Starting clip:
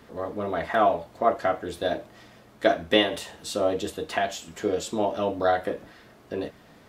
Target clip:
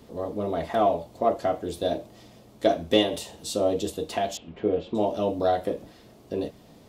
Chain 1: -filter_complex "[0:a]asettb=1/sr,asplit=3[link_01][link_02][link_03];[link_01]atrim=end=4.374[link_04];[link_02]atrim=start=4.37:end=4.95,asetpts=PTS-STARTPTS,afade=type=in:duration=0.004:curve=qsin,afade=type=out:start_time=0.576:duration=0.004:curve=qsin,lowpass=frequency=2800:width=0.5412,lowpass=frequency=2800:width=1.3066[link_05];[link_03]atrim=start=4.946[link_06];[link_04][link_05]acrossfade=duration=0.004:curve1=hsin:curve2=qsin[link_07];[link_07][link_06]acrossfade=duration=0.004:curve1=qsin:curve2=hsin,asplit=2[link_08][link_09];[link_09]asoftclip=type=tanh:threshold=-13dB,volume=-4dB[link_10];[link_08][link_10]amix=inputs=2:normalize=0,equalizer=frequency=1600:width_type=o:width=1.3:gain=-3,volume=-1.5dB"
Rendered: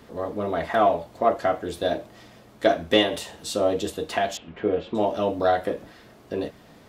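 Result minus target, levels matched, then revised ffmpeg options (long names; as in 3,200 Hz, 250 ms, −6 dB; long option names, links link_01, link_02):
2,000 Hz band +6.0 dB
-filter_complex "[0:a]asettb=1/sr,asplit=3[link_01][link_02][link_03];[link_01]atrim=end=4.374[link_04];[link_02]atrim=start=4.37:end=4.95,asetpts=PTS-STARTPTS,afade=type=in:duration=0.004:curve=qsin,afade=type=out:start_time=0.576:duration=0.004:curve=qsin,lowpass=frequency=2800:width=0.5412,lowpass=frequency=2800:width=1.3066[link_05];[link_03]atrim=start=4.946[link_06];[link_04][link_05]acrossfade=duration=0.004:curve1=hsin:curve2=qsin[link_07];[link_07][link_06]acrossfade=duration=0.004:curve1=qsin:curve2=hsin,asplit=2[link_08][link_09];[link_09]asoftclip=type=tanh:threshold=-13dB,volume=-4dB[link_10];[link_08][link_10]amix=inputs=2:normalize=0,equalizer=frequency=1600:width_type=o:width=1.3:gain=-13,volume=-1.5dB"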